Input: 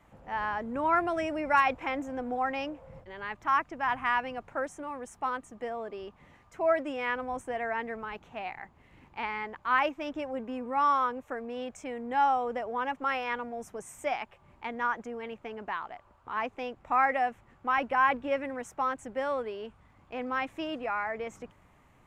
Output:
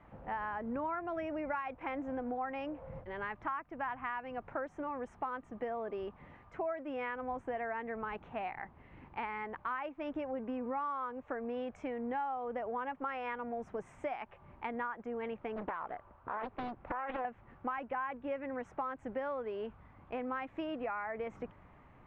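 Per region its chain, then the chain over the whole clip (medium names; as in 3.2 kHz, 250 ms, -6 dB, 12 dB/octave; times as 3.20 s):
15.56–17.25 s: treble shelf 5.7 kHz -8.5 dB + compression, threshold -32 dBFS + loudspeaker Doppler distortion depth 0.96 ms
whole clip: compression 8:1, threshold -37 dBFS; low-pass 2.1 kHz 12 dB/octave; trim +2.5 dB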